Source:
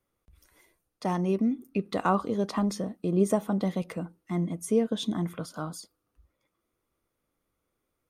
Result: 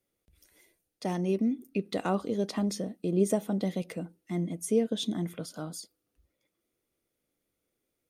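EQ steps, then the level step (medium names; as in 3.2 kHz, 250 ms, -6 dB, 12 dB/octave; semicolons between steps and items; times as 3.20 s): bass shelf 140 Hz -10.5 dB; peaking EQ 1.1 kHz -12.5 dB 0.97 oct; +1.5 dB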